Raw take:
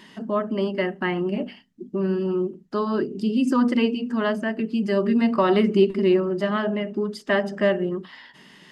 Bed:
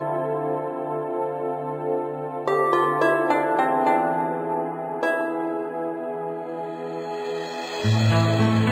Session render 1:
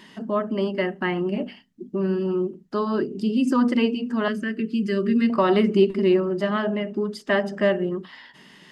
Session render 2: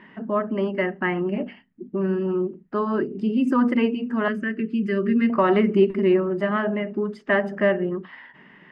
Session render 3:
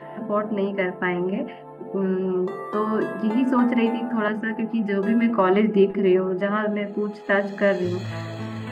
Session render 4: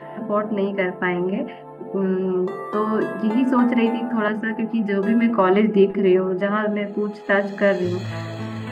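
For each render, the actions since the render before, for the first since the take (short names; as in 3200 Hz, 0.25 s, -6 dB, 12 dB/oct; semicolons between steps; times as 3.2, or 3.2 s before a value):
4.28–5.3 Butterworth band-stop 790 Hz, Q 0.97
low-pass opened by the level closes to 2500 Hz, open at -20.5 dBFS; resonant high shelf 3000 Hz -11 dB, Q 1.5
add bed -12.5 dB
gain +2 dB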